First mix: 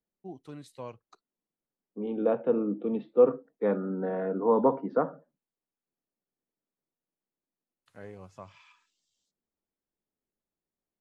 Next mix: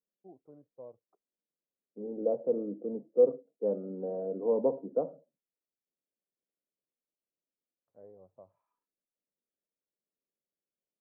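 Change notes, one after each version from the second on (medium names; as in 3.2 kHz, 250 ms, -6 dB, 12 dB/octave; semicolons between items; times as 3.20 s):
first voice: add tilt EQ +2.5 dB/octave; master: add four-pole ladder low-pass 670 Hz, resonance 50%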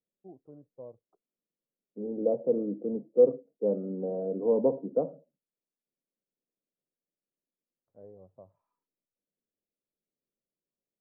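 master: add tilt EQ -2.5 dB/octave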